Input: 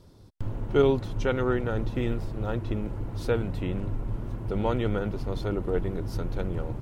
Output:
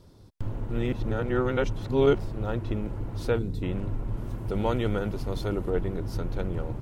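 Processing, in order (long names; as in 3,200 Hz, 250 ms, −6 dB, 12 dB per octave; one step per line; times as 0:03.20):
0:00.70–0:02.19: reverse
0:03.38–0:03.63: gain on a spectral selection 510–3,400 Hz −12 dB
0:04.17–0:05.69: high-shelf EQ 5,500 Hz +8 dB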